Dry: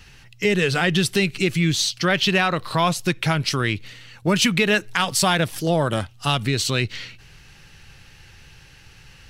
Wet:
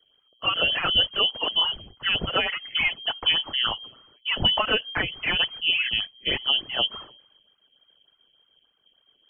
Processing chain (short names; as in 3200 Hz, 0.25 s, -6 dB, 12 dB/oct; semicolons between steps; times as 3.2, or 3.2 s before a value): phaser stages 12, 3.4 Hz, lowest notch 140–2100 Hz; inverted band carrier 3200 Hz; three-band expander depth 70%; gain -2 dB